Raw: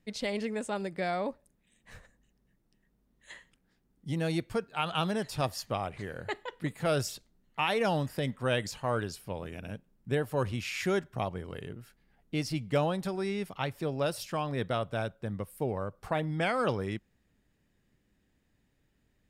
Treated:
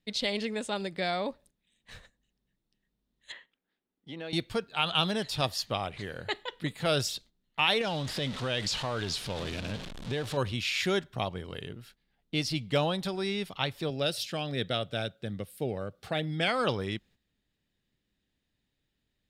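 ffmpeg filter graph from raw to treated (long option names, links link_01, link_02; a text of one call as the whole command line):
ffmpeg -i in.wav -filter_complex "[0:a]asettb=1/sr,asplit=3[link_01][link_02][link_03];[link_01]atrim=end=3.324[link_04];[link_02]atrim=start=3.32:end=4.33,asetpts=PTS-STARTPTS,afade=type=in:duration=0.004:curve=qsin,afade=type=out:start_time=1.006:duration=0.004:curve=qsin,acrossover=split=240 3300:gain=0.126 1 0.0891[link_05][link_06][link_07];[link_05][link_06][link_07]amix=inputs=3:normalize=0,acompressor=threshold=-40dB:ratio=2:attack=3.2:release=140:knee=1:detection=peak[link_08];[link_03]atrim=start=4.326[link_09];[link_04][link_08]acrossfade=duration=0.004:curve1=hsin:curve2=qsin[link_10];[link_10][link_09]acrossfade=duration=0.004:curve1=qsin:curve2=hsin,asettb=1/sr,asplit=3[link_11][link_12][link_13];[link_11]atrim=end=7.814[link_14];[link_12]atrim=start=7.81:end=10.37,asetpts=PTS-STARTPTS,afade=type=in:duration=0.004:curve=qsin,afade=type=out:start_time=2.556:duration=0.004:curve=qsin,aeval=exprs='val(0)+0.5*0.0158*sgn(val(0))':channel_layout=same,lowpass=8200,acompressor=threshold=-29dB:ratio=4:attack=3.2:release=140:knee=1:detection=peak[link_15];[link_13]atrim=start=10.366[link_16];[link_14][link_15]acrossfade=duration=0.004:curve1=hsin:curve2=qsin[link_17];[link_17][link_16]acrossfade=duration=0.004:curve1=qsin:curve2=hsin,asettb=1/sr,asplit=3[link_18][link_19][link_20];[link_18]atrim=end=13.904[link_21];[link_19]atrim=start=13.9:end=16.48,asetpts=PTS-STARTPTS,afade=type=in:duration=0.004:curve=qsin,afade=type=out:start_time=2.576:duration=0.004:curve=qsin,highpass=85,equalizer=frequency=1000:width=3.8:gain=-14[link_22];[link_20]atrim=start=16.476[link_23];[link_21][link_22]acrossfade=duration=0.004:curve1=hsin:curve2=qsin[link_24];[link_24][link_23]acrossfade=duration=0.004:curve1=qsin:curve2=hsin,agate=range=-9dB:threshold=-57dB:ratio=16:detection=peak,equalizer=frequency=3700:width_type=o:width=0.95:gain=11.5" out.wav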